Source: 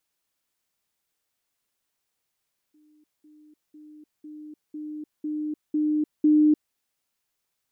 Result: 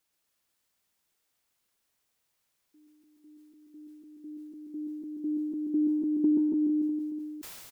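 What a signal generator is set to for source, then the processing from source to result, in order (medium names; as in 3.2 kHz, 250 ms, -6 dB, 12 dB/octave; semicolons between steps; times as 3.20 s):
level ladder 303 Hz -56.5 dBFS, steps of 6 dB, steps 8, 0.30 s 0.20 s
compression, threshold -22 dBFS; on a send: reverse bouncing-ball echo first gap 130 ms, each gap 1.15×, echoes 5; on the sum: decay stretcher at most 28 dB/s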